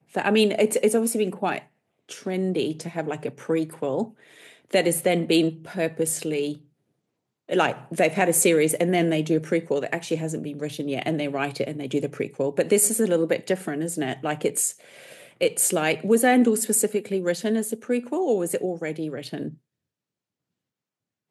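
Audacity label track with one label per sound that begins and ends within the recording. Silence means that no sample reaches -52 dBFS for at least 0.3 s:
2.090000	6.650000	sound
7.490000	19.580000	sound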